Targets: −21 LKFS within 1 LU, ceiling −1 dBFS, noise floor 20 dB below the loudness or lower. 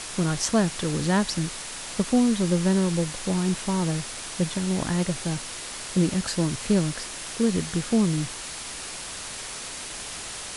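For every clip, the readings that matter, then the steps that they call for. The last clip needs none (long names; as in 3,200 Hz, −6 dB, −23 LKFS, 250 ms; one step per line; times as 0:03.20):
background noise floor −36 dBFS; target noise floor −46 dBFS; integrated loudness −26.0 LKFS; sample peak −8.5 dBFS; target loudness −21.0 LKFS
→ broadband denoise 10 dB, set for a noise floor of −36 dBFS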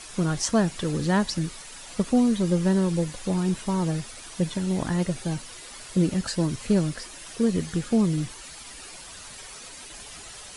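background noise floor −43 dBFS; target noise floor −46 dBFS
→ broadband denoise 6 dB, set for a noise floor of −43 dBFS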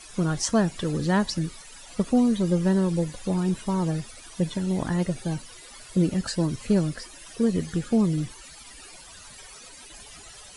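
background noise floor −46 dBFS; integrated loudness −25.5 LKFS; sample peak −9.5 dBFS; target loudness −21.0 LKFS
→ level +4.5 dB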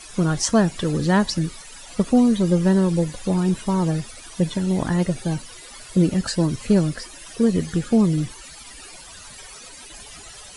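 integrated loudness −21.0 LKFS; sample peak −5.0 dBFS; background noise floor −42 dBFS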